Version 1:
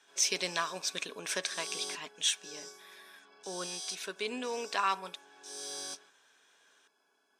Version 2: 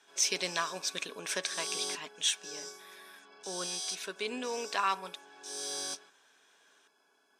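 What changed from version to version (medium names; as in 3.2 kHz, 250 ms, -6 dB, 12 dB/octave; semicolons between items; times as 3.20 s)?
background +3.5 dB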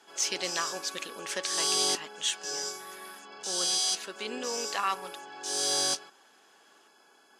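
background +10.0 dB; master: remove rippled EQ curve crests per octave 1.6, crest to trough 6 dB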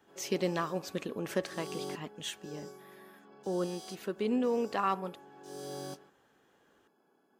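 background -12.0 dB; master: remove frequency weighting ITU-R 468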